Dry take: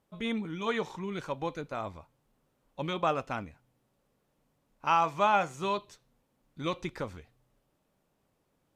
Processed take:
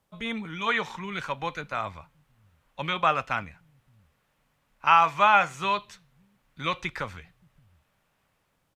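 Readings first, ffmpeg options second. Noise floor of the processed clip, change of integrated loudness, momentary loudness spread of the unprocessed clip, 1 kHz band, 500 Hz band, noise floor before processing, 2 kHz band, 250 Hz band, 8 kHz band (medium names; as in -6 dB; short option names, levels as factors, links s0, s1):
-73 dBFS, +6.0 dB, 13 LU, +6.5 dB, 0.0 dB, -76 dBFS, +10.0 dB, -1.0 dB, no reading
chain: -filter_complex "[0:a]equalizer=f=330:w=0.9:g=-8,acrossover=split=180|1300|2900[s0][s1][s2][s3];[s0]aecho=1:1:578:0.15[s4];[s2]dynaudnorm=f=180:g=5:m=2.99[s5];[s3]alimiter=level_in=5.96:limit=0.0631:level=0:latency=1:release=33,volume=0.168[s6];[s4][s1][s5][s6]amix=inputs=4:normalize=0,volume=1.58"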